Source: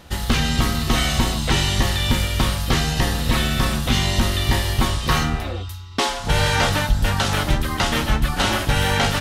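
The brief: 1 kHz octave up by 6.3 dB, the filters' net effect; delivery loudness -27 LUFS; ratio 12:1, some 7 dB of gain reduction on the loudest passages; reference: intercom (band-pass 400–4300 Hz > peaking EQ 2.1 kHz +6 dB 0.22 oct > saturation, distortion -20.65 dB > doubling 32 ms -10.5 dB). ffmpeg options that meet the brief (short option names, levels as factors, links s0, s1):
-filter_complex "[0:a]equalizer=f=1000:t=o:g=8,acompressor=threshold=0.112:ratio=12,highpass=400,lowpass=4300,equalizer=f=2100:t=o:w=0.22:g=6,asoftclip=threshold=0.168,asplit=2[s0][s1];[s1]adelay=32,volume=0.299[s2];[s0][s2]amix=inputs=2:normalize=0,volume=0.944"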